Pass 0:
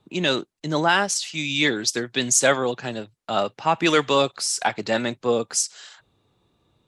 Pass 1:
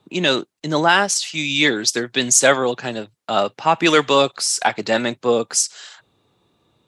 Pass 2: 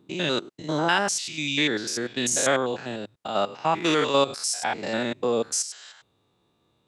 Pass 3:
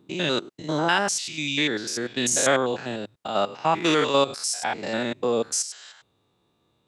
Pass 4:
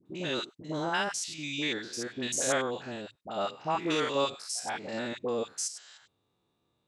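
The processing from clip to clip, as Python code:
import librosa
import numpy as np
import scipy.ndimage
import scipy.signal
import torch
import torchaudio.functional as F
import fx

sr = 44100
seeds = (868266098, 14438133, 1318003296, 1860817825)

y1 = fx.highpass(x, sr, hz=140.0, slope=6)
y1 = y1 * 10.0 ** (4.5 / 20.0)
y2 = fx.spec_steps(y1, sr, hold_ms=100)
y2 = y2 * 10.0 ** (-4.5 / 20.0)
y3 = fx.rider(y2, sr, range_db=10, speed_s=2.0)
y4 = fx.dispersion(y3, sr, late='highs', ms=59.0, hz=940.0)
y4 = y4 * 10.0 ** (-8.0 / 20.0)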